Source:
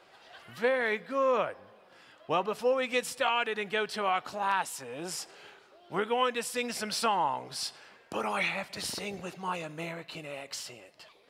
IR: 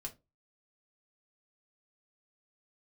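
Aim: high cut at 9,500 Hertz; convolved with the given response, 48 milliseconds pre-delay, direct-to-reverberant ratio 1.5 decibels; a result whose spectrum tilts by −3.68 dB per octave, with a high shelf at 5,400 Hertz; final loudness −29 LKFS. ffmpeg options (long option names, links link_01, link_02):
-filter_complex "[0:a]lowpass=9500,highshelf=frequency=5400:gain=-7,asplit=2[link_01][link_02];[1:a]atrim=start_sample=2205,adelay=48[link_03];[link_02][link_03]afir=irnorm=-1:irlink=0,volume=1.5dB[link_04];[link_01][link_04]amix=inputs=2:normalize=0,volume=0.5dB"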